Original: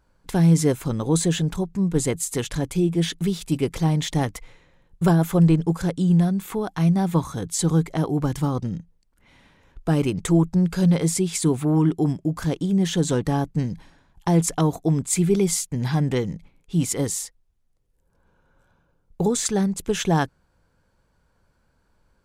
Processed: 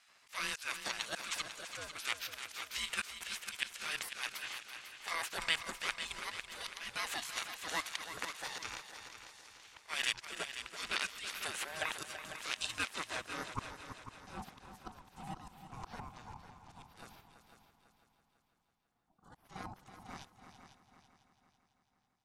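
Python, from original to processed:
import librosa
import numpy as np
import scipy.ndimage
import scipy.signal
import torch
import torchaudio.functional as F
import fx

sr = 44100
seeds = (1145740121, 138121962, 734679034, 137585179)

p1 = fx.spec_gate(x, sr, threshold_db=-25, keep='weak')
p2 = fx.bass_treble(p1, sr, bass_db=-5, treble_db=14)
p3 = fx.level_steps(p2, sr, step_db=20)
p4 = p2 + (p3 * 10.0 ** (1.5 / 20.0))
p5 = fx.auto_swell(p4, sr, attack_ms=395.0)
p6 = fx.rider(p5, sr, range_db=5, speed_s=0.5)
p7 = fx.filter_sweep_bandpass(p6, sr, from_hz=2000.0, to_hz=280.0, start_s=12.78, end_s=13.99, q=1.9)
p8 = p7 * np.sin(2.0 * np.pi * 480.0 * np.arange(len(p7)) / sr)
p9 = p8 + fx.echo_heads(p8, sr, ms=166, heads='second and third', feedback_pct=49, wet_db=-10.5, dry=0)
y = p9 * 10.0 ** (11.5 / 20.0)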